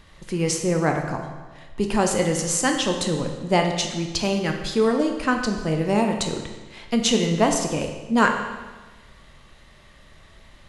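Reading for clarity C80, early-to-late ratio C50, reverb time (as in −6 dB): 7.5 dB, 5.5 dB, 1.3 s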